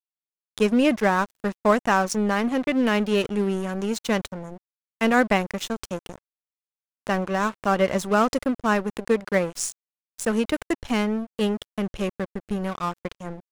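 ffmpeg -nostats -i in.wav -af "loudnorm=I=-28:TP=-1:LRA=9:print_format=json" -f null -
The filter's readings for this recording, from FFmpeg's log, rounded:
"input_i" : "-24.7",
"input_tp" : "-5.4",
"input_lra" : "5.3",
"input_thresh" : "-35.2",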